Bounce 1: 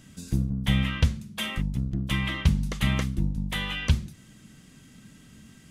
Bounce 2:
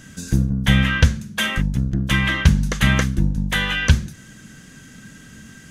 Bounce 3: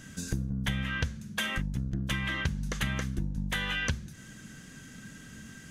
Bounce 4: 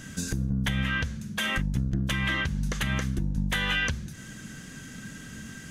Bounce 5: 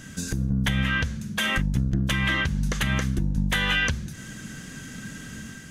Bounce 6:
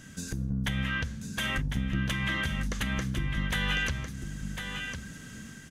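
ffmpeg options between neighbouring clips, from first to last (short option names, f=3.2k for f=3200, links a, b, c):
-af "equalizer=f=500:t=o:w=0.33:g=3,equalizer=f=1.6k:t=o:w=0.33:g=11,equalizer=f=6.3k:t=o:w=0.33:g=6,volume=7.5dB"
-af "acompressor=threshold=-23dB:ratio=6,volume=-5dB"
-af "alimiter=limit=-22dB:level=0:latency=1:release=108,volume=5.5dB"
-af "dynaudnorm=f=140:g=5:m=3.5dB"
-af "aecho=1:1:1052:0.447,volume=-6.5dB"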